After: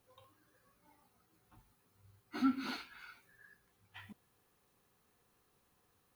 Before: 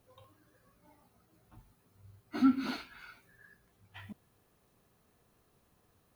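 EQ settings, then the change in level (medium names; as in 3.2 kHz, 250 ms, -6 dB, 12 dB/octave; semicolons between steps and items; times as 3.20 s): Butterworth band-stop 640 Hz, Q 6.6; bass shelf 420 Hz -7 dB; -1.5 dB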